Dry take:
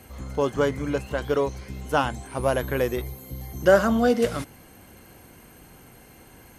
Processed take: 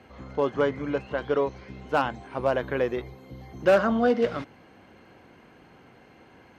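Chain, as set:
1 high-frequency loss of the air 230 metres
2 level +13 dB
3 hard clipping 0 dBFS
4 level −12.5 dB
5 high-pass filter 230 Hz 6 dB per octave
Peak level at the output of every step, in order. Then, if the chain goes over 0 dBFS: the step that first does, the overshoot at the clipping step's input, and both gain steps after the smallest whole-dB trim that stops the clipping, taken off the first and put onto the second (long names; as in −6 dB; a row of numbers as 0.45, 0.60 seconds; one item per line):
−5.5, +7.5, 0.0, −12.5, −9.5 dBFS
step 2, 7.5 dB
step 2 +5 dB, step 4 −4.5 dB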